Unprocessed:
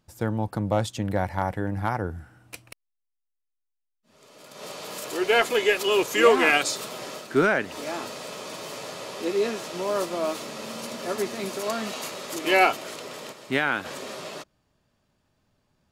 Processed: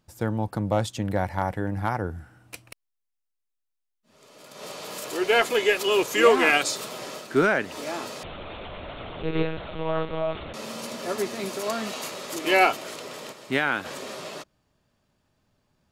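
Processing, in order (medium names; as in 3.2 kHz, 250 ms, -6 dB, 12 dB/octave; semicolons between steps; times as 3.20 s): 8.23–10.54 s: monotone LPC vocoder at 8 kHz 160 Hz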